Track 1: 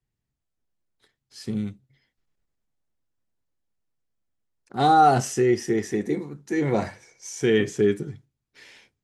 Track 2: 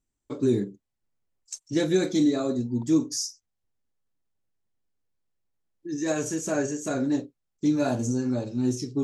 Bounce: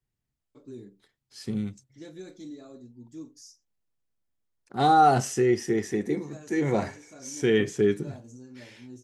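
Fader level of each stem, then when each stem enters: −2.0, −20.0 decibels; 0.00, 0.25 seconds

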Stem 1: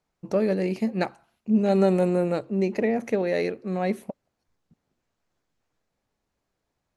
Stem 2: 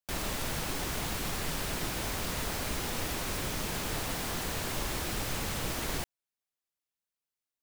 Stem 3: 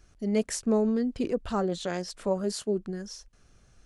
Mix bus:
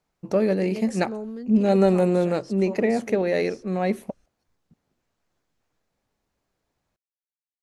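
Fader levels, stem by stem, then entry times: +2.0 dB, muted, −8.5 dB; 0.00 s, muted, 0.40 s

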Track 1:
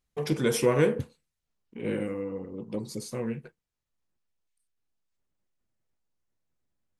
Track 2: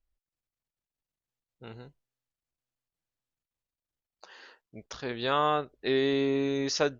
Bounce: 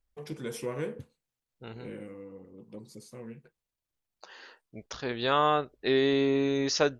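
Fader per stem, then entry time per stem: −11.5, +1.5 decibels; 0.00, 0.00 seconds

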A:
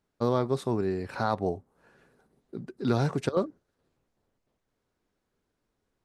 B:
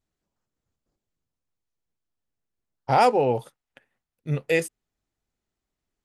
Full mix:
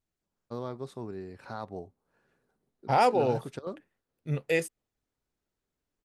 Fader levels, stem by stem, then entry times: −11.0, −4.5 decibels; 0.30, 0.00 seconds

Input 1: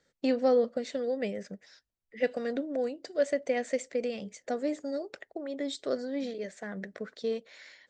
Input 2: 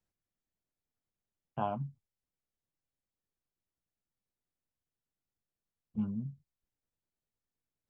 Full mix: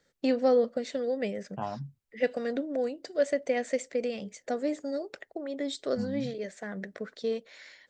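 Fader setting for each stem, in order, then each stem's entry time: +1.0, −1.0 decibels; 0.00, 0.00 seconds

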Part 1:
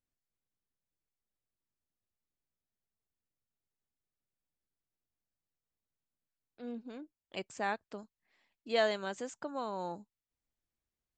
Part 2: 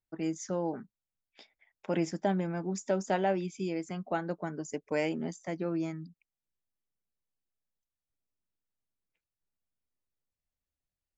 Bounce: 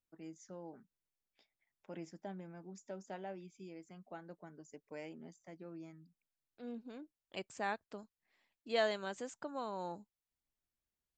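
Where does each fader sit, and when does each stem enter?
−3.5, −17.0 decibels; 0.00, 0.00 seconds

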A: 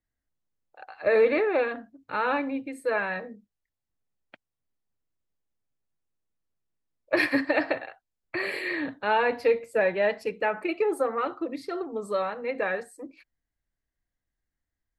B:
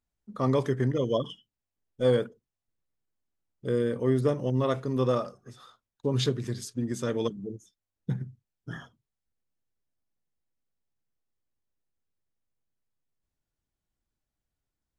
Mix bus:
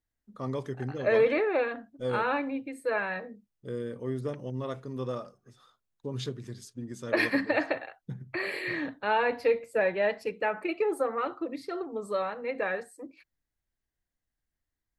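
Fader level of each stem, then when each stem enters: −2.5, −8.5 decibels; 0.00, 0.00 seconds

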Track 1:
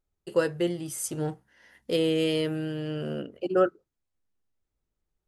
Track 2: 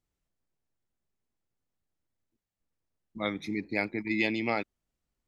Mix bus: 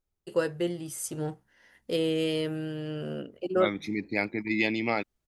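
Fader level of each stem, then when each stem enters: −2.5, +1.5 decibels; 0.00, 0.40 seconds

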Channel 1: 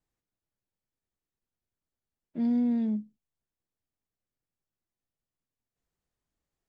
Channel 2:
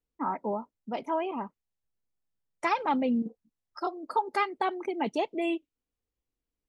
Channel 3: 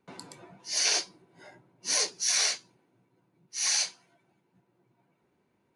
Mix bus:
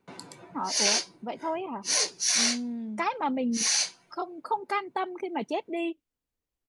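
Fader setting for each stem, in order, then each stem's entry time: −7.5, −1.5, +1.5 decibels; 0.00, 0.35, 0.00 seconds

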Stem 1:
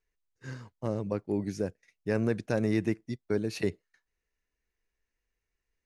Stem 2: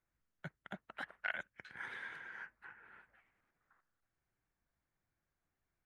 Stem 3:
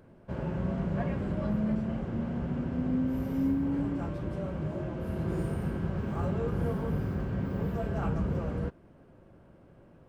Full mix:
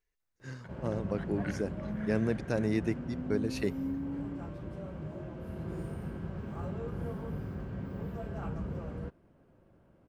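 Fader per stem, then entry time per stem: −2.5, −6.0, −7.0 decibels; 0.00, 0.20, 0.40 seconds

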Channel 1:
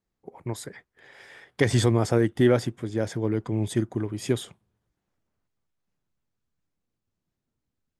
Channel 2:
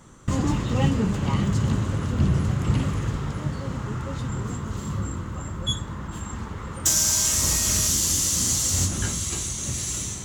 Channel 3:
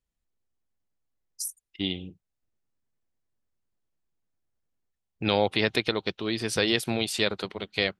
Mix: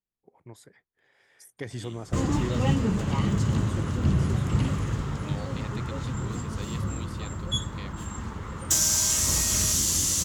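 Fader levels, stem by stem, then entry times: −14.5, −2.0, −19.0 decibels; 0.00, 1.85, 0.00 seconds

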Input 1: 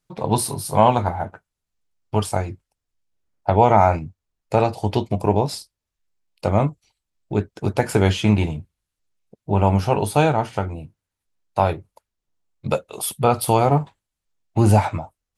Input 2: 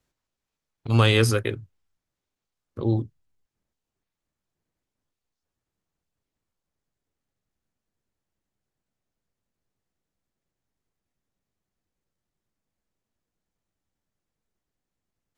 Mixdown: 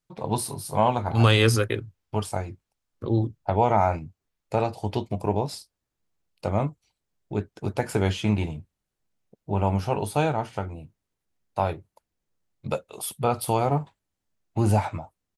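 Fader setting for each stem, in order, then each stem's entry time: −6.5, 0.0 decibels; 0.00, 0.25 seconds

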